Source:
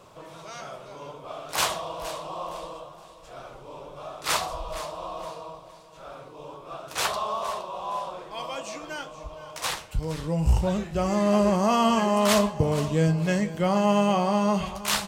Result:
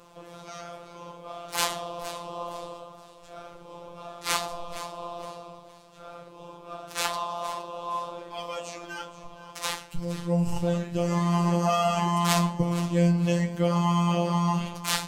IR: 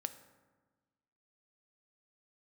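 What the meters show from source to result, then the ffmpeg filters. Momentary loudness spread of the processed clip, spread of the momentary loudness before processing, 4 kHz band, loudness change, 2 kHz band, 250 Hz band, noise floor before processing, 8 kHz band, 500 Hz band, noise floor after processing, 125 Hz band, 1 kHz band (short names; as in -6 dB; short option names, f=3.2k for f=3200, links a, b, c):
21 LU, 21 LU, -2.0 dB, -2.0 dB, -2.5 dB, -1.5 dB, -48 dBFS, -1.5 dB, -4.5 dB, -50 dBFS, +1.5 dB, -2.0 dB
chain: -filter_complex "[0:a]asplit=2[a][b];[1:a]atrim=start_sample=2205,atrim=end_sample=6615[c];[b][c]afir=irnorm=-1:irlink=0,volume=1dB[d];[a][d]amix=inputs=2:normalize=0,afftfilt=real='hypot(re,im)*cos(PI*b)':imag='0':win_size=1024:overlap=0.75,volume=-4dB"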